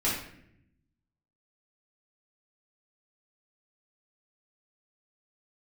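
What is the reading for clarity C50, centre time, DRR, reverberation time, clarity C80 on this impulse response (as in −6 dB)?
2.5 dB, 47 ms, −8.0 dB, 0.70 s, 6.5 dB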